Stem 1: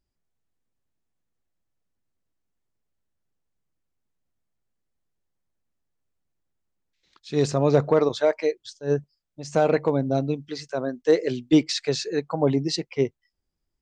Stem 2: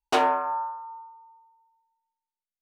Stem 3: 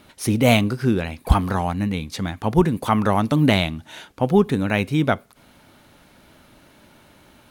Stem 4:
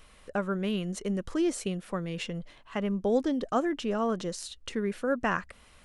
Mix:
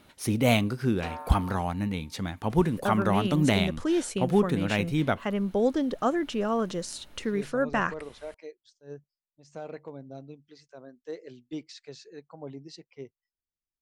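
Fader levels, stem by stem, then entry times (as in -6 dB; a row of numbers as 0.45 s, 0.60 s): -19.5 dB, -17.0 dB, -6.5 dB, +1.5 dB; 0.00 s, 0.90 s, 0.00 s, 2.50 s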